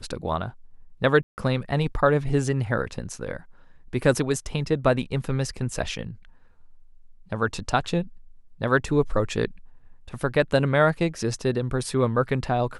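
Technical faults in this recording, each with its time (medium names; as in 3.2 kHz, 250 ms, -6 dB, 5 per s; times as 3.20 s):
1.23–1.38 s: dropout 149 ms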